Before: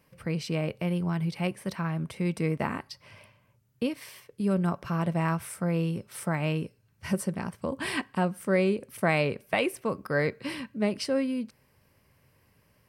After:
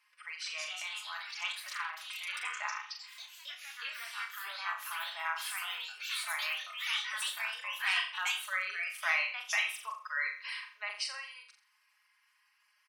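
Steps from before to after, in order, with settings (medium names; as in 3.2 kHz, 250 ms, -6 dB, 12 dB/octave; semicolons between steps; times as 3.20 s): median filter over 3 samples; inverse Chebyshev high-pass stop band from 250 Hz, stop band 70 dB; spectral gate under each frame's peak -20 dB strong; comb 4.8 ms; on a send: flutter echo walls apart 7.4 m, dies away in 0.44 s; on the sum: ever faster or slower copies 241 ms, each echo +3 st, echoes 3; trim -2 dB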